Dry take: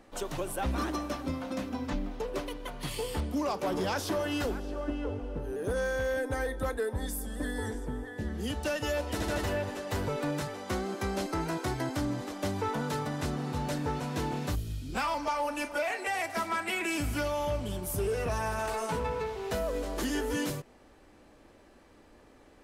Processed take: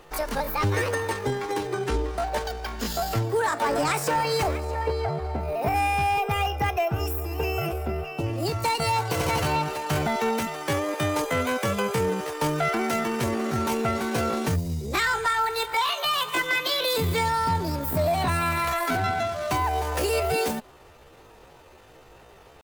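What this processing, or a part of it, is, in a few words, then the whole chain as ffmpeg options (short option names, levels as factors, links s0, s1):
chipmunk voice: -af "asetrate=68011,aresample=44100,atempo=0.64842,volume=2.24"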